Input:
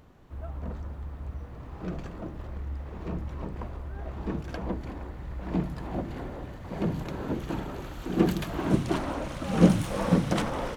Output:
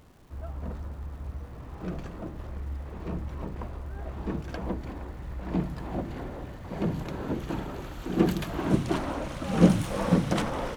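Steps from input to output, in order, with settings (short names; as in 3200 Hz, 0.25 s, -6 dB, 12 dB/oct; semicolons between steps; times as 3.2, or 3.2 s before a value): crackle 510/s -53 dBFS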